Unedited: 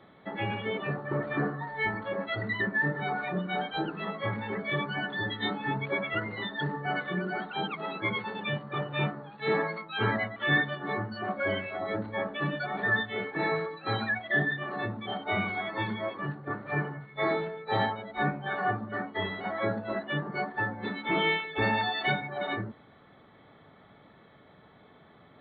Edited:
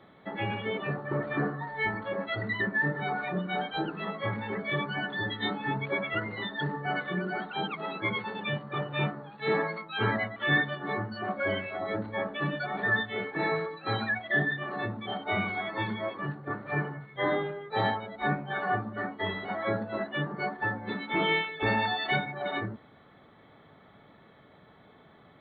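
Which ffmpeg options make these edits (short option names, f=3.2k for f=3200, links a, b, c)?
-filter_complex "[0:a]asplit=3[a][b][c];[a]atrim=end=17.164[d];[b]atrim=start=17.16:end=17.66,asetpts=PTS-STARTPTS,asetrate=40572,aresample=44100,atrim=end_sample=23967,asetpts=PTS-STARTPTS[e];[c]atrim=start=17.656[f];[d][e]acrossfade=d=0.004:c1=hsin:c2=hsin[g];[g][f]acrossfade=d=0.004:c1=hsin:c2=hsin"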